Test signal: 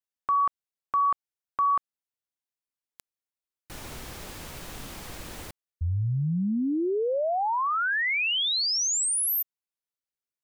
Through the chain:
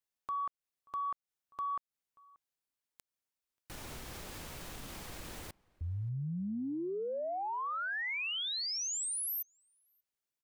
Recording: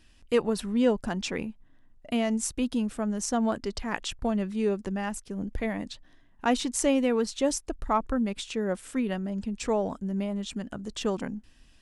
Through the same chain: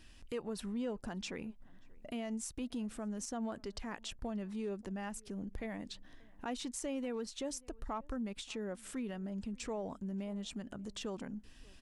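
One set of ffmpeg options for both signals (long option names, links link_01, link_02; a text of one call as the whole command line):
ffmpeg -i in.wav -filter_complex "[0:a]aeval=exprs='0.316*(cos(1*acos(clip(val(0)/0.316,-1,1)))-cos(1*PI/2))+0.00708*(cos(5*acos(clip(val(0)/0.316,-1,1)))-cos(5*PI/2))':channel_layout=same,acompressor=threshold=-41dB:ratio=2.5:attack=0.21:release=286:detection=peak,asplit=2[link_01][link_02];[link_02]adelay=583.1,volume=-25dB,highshelf=frequency=4000:gain=-13.1[link_03];[link_01][link_03]amix=inputs=2:normalize=0" out.wav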